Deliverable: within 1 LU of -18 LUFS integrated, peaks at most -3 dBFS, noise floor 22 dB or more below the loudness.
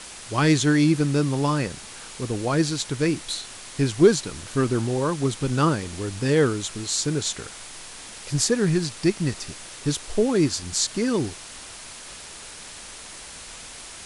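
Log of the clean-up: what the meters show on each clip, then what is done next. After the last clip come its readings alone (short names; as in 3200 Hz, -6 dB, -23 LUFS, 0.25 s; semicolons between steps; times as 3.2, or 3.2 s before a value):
noise floor -41 dBFS; noise floor target -46 dBFS; loudness -23.5 LUFS; peak -4.5 dBFS; loudness target -18.0 LUFS
-> denoiser 6 dB, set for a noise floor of -41 dBFS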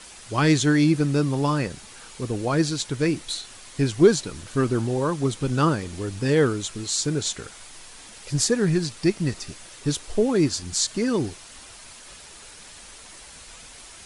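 noise floor -45 dBFS; noise floor target -46 dBFS
-> denoiser 6 dB, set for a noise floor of -45 dBFS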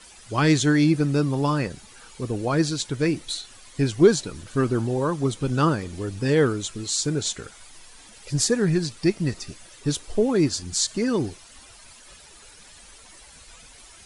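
noise floor -49 dBFS; loudness -23.5 LUFS; peak -4.5 dBFS; loudness target -18.0 LUFS
-> gain +5.5 dB; limiter -3 dBFS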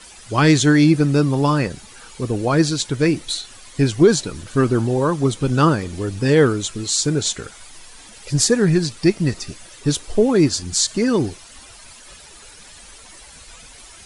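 loudness -18.5 LUFS; peak -3.0 dBFS; noise floor -43 dBFS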